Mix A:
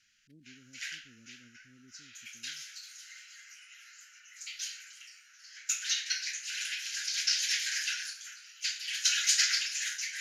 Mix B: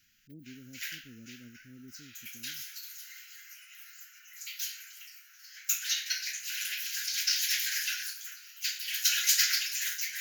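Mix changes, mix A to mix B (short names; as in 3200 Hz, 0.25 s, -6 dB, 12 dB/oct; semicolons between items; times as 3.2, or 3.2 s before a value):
speech +8.5 dB; master: remove LPF 8700 Hz 24 dB/oct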